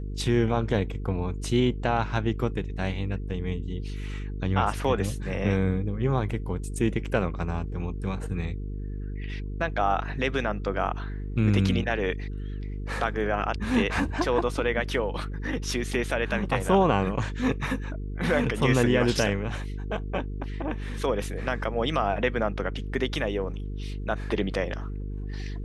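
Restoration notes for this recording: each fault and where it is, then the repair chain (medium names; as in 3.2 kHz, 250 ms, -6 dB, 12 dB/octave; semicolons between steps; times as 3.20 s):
buzz 50 Hz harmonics 9 -33 dBFS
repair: de-hum 50 Hz, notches 9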